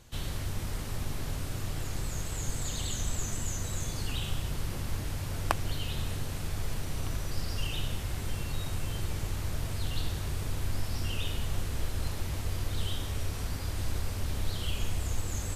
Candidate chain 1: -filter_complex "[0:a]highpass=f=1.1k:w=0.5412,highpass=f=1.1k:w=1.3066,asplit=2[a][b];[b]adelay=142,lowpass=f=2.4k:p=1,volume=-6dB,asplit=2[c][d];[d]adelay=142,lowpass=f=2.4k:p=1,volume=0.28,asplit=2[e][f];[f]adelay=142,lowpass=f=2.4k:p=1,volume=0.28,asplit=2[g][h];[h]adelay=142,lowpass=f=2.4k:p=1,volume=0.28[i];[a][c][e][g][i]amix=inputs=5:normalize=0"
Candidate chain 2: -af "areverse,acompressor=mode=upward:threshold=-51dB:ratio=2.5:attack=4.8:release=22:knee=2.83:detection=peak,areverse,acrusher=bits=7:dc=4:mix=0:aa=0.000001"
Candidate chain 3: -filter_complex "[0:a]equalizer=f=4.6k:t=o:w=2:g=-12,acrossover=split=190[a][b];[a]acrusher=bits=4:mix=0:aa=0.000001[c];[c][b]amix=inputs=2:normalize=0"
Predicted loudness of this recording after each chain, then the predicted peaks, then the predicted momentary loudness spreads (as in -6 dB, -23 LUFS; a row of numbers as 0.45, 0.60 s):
-40.5, -34.5, -34.0 LUFS; -11.0, -6.0, -9.0 dBFS; 6, 2, 2 LU